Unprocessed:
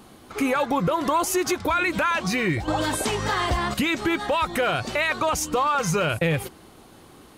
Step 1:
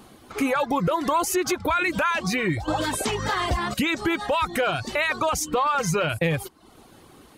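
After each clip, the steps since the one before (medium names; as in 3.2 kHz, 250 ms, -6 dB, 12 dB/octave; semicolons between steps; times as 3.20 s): reverb removal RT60 0.54 s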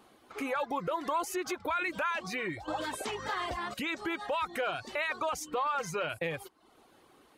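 tone controls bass -11 dB, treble -5 dB; trim -8.5 dB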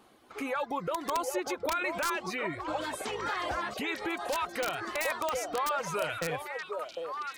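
integer overflow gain 23 dB; repeats whose band climbs or falls 754 ms, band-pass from 560 Hz, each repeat 1.4 oct, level -1 dB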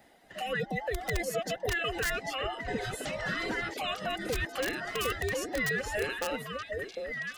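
every band turned upside down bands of 1 kHz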